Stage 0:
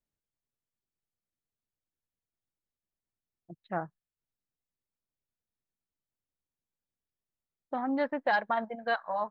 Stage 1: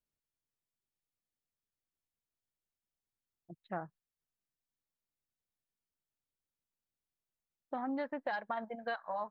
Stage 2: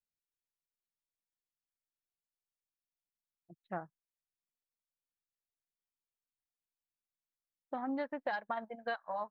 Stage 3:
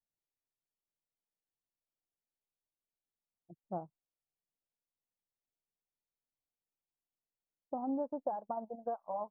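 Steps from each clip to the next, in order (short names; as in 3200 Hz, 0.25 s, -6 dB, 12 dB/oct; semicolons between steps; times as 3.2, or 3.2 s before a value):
compressor 5:1, threshold -30 dBFS, peak gain reduction 7.5 dB; gain -3.5 dB
upward expander 1.5:1, over -57 dBFS; gain +1.5 dB
inverse Chebyshev low-pass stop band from 1800 Hz, stop band 40 dB; gain +1.5 dB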